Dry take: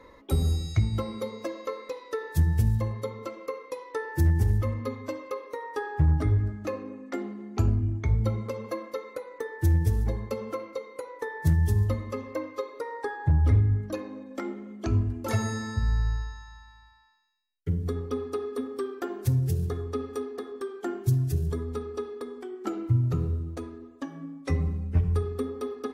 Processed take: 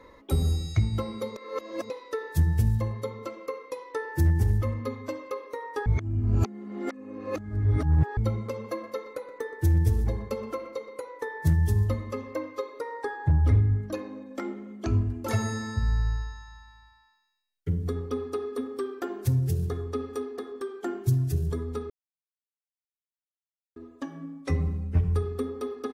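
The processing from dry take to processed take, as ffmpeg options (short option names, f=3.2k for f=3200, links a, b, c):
-filter_complex "[0:a]asplit=3[a][b][c];[a]afade=t=out:st=8.77:d=0.02[d];[b]asplit=2[e][f];[f]adelay=123,lowpass=f=2k:p=1,volume=-11.5dB,asplit=2[g][h];[h]adelay=123,lowpass=f=2k:p=1,volume=0.39,asplit=2[i][j];[j]adelay=123,lowpass=f=2k:p=1,volume=0.39,asplit=2[k][l];[l]adelay=123,lowpass=f=2k:p=1,volume=0.39[m];[e][g][i][k][m]amix=inputs=5:normalize=0,afade=t=in:st=8.77:d=0.02,afade=t=out:st=10.98:d=0.02[n];[c]afade=t=in:st=10.98:d=0.02[o];[d][n][o]amix=inputs=3:normalize=0,asplit=7[p][q][r][s][t][u][v];[p]atrim=end=1.362[w];[q]atrim=start=1.358:end=1.902,asetpts=PTS-STARTPTS,areverse[x];[r]atrim=start=1.898:end=5.862[y];[s]atrim=start=5.858:end=8.172,asetpts=PTS-STARTPTS,areverse[z];[t]atrim=start=8.168:end=21.9,asetpts=PTS-STARTPTS,afade=t=out:st=13.728:d=0.004:c=hsin[aa];[u]atrim=start=21.9:end=23.76,asetpts=PTS-STARTPTS,volume=0[ab];[v]atrim=start=23.76,asetpts=PTS-STARTPTS,afade=t=in:d=0.004:c=hsin[ac];[w][x]acrossfade=d=0.004:c1=hsin:c2=hsin[ad];[ad][y]acrossfade=d=0.004:c1=hsin:c2=hsin[ae];[ae][z]acrossfade=d=0.004:c1=hsin:c2=hsin[af];[aa][ab][ac]concat=n=3:v=0:a=1[ag];[af][ag]acrossfade=d=0.004:c1=hsin:c2=hsin"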